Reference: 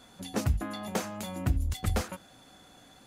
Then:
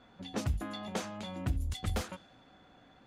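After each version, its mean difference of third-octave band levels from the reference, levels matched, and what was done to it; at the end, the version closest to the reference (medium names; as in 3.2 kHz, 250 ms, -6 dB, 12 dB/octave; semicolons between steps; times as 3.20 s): 3.0 dB: dynamic bell 3.4 kHz, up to +4 dB, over -56 dBFS, Q 2.4; level-controlled noise filter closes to 2.5 kHz, open at -23.5 dBFS; in parallel at -8 dB: saturation -33 dBFS, distortion -5 dB; on the sum: trim -6 dB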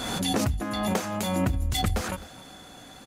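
4.5 dB: compression 4:1, threshold -33 dBFS, peak gain reduction 11 dB; delay 259 ms -17.5 dB; swell ahead of each attack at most 28 dB/s; trim +8.5 dB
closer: first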